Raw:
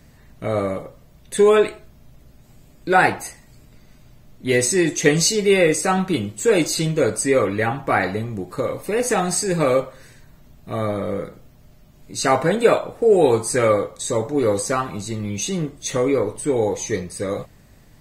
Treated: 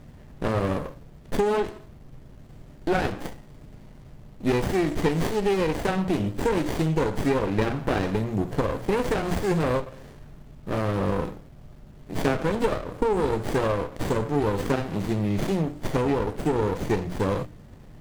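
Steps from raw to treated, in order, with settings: notches 60/120/180/240/300 Hz; compressor 6:1, threshold -24 dBFS, peak gain reduction 14.5 dB; running maximum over 33 samples; gain +5 dB

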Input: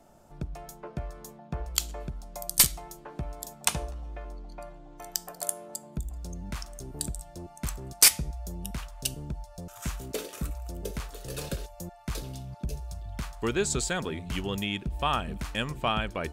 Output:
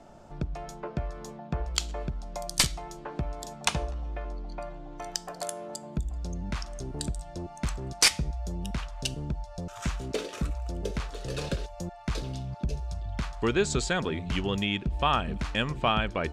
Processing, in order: LPF 5500 Hz 12 dB/oct; in parallel at -2.5 dB: compressor, threshold -42 dBFS, peak gain reduction 21.5 dB; on the sum: gain +1.5 dB

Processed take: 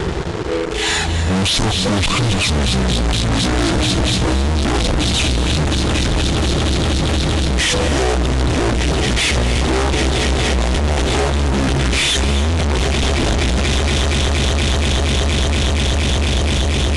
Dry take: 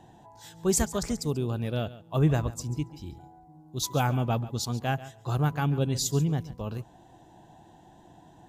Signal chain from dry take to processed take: reverb removal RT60 1.1 s; high shelf 12000 Hz +4.5 dB; soft clip -25 dBFS, distortion -11 dB; swelling echo 0.118 s, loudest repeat 8, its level -18 dB; fuzz box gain 59 dB, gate -57 dBFS; reverb RT60 0.30 s, pre-delay 90 ms, DRR 9.5 dB; speed mistake 15 ips tape played at 7.5 ips; gain -2 dB; AAC 192 kbps 48000 Hz

